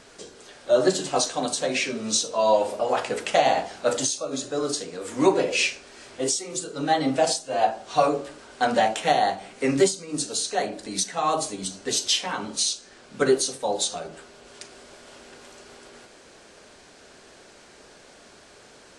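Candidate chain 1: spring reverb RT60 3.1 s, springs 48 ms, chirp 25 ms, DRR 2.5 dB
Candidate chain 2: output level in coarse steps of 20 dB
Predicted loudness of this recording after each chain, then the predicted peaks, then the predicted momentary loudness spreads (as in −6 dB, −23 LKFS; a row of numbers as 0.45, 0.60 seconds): −22.5, −30.5 LKFS; −5.5, −9.0 dBFS; 9, 18 LU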